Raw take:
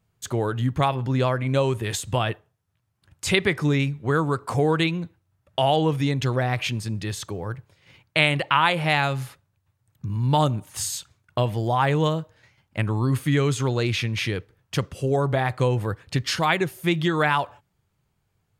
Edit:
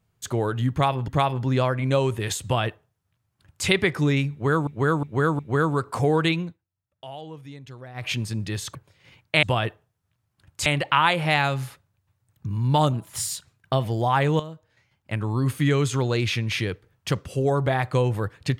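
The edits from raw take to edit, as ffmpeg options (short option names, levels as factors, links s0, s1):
-filter_complex "[0:a]asplit=13[s0][s1][s2][s3][s4][s5][s6][s7][s8][s9][s10][s11][s12];[s0]atrim=end=1.082[s13];[s1]atrim=start=0.708:end=4.302[s14];[s2]atrim=start=3.938:end=4.302[s15];[s3]atrim=start=3.938:end=4.302[s16];[s4]atrim=start=3.938:end=5.13,asetpts=PTS-STARTPTS,afade=t=out:st=1.012:d=0.18:silence=0.125893[s17];[s5]atrim=start=5.13:end=6.49,asetpts=PTS-STARTPTS,volume=0.126[s18];[s6]atrim=start=6.49:end=7.302,asetpts=PTS-STARTPTS,afade=t=in:d=0.18:silence=0.125893[s19];[s7]atrim=start=7.568:end=8.252[s20];[s8]atrim=start=2.068:end=3.302[s21];[s9]atrim=start=8.248:end=10.524[s22];[s10]atrim=start=10.52:end=11.51,asetpts=PTS-STARTPTS,asetrate=47628,aresample=44100[s23];[s11]atrim=start=11.506:end=12.06,asetpts=PTS-STARTPTS,afade=t=out:st=0.55:d=0.004:c=hsin:silence=0.199526[s24];[s12]atrim=start=12.06,asetpts=PTS-STARTPTS,afade=t=in:d=1.2:silence=0.199526[s25];[s13][s14]acrossfade=d=0.004:c1=hsin:c2=hsin[s26];[s26][s15]acrossfade=d=0.004:c1=hsin:c2=hsin[s27];[s27][s16]acrossfade=d=0.004:c1=hsin:c2=hsin[s28];[s17][s18][s19]concat=n=3:v=0:a=1[s29];[s28][s29]acrossfade=d=0.004:c1=hsin:c2=hsin[s30];[s30][s20]acrossfade=d=0.004:c1=hsin:c2=hsin[s31];[s31][s21]acrossfade=d=0.004:c1=hsin:c2=hsin[s32];[s32][s22]acrossfade=d=0.004:c1=hsin:c2=hsin[s33];[s33][s23]acrossfade=d=0.004:c1=hsin:c2=hsin[s34];[s24][s25]concat=n=2:v=0:a=1[s35];[s34][s35]acrossfade=d=0.004:c1=hsin:c2=hsin"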